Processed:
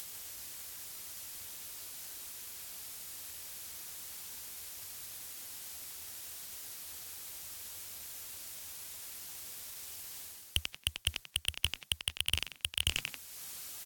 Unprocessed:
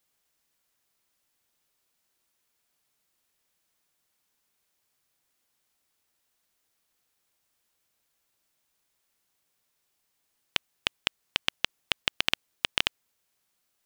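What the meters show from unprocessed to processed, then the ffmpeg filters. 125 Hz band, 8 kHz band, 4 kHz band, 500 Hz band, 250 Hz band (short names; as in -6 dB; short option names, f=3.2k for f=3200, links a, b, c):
+7.5 dB, +9.0 dB, -3.5 dB, -9.5 dB, -7.0 dB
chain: -filter_complex "[0:a]asplit=2[a][b];[b]aeval=exprs='0.178*(abs(mod(val(0)/0.178+3,4)-2)-1)':c=same,volume=-6.5dB[c];[a][c]amix=inputs=2:normalize=0,equalizer=f=78:w=2.1:g=11.5,asplit=4[d][e][f][g];[e]adelay=91,afreqshift=-110,volume=-21dB[h];[f]adelay=182,afreqshift=-220,volume=-29.9dB[i];[g]adelay=273,afreqshift=-330,volume=-38.7dB[j];[d][h][i][j]amix=inputs=4:normalize=0,areverse,acompressor=threshold=-40dB:ratio=5,areverse,asoftclip=type=tanh:threshold=-36dB,acompressor=mode=upward:threshold=-60dB:ratio=2.5,highshelf=f=3.2k:g=9.5,volume=14.5dB" -ar 48000 -c:a aac -b:a 64k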